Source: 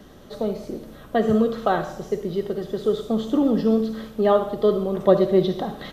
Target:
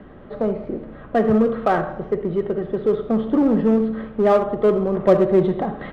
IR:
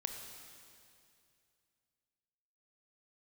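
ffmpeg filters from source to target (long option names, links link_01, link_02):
-filter_complex "[0:a]lowpass=frequency=2300:width=0.5412,lowpass=frequency=2300:width=1.3066,asplit=2[link_01][link_02];[link_02]asoftclip=type=hard:threshold=-21.5dB,volume=-4dB[link_03];[link_01][link_03]amix=inputs=2:normalize=0"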